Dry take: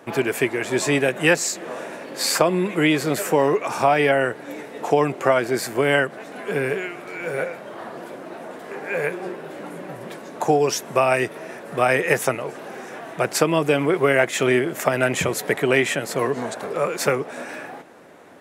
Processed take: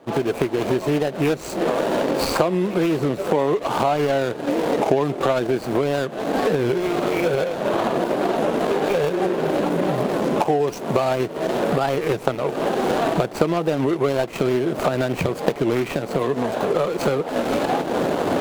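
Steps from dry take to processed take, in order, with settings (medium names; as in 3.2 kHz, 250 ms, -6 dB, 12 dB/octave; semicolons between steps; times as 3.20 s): median filter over 25 samples; recorder AGC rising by 62 dB/s; warped record 33 1/3 rpm, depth 160 cents; trim -1.5 dB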